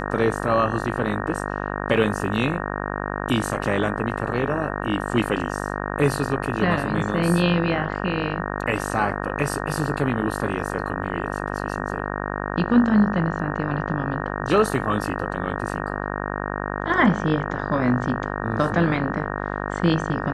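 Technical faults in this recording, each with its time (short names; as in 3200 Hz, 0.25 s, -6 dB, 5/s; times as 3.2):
buzz 50 Hz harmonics 37 -28 dBFS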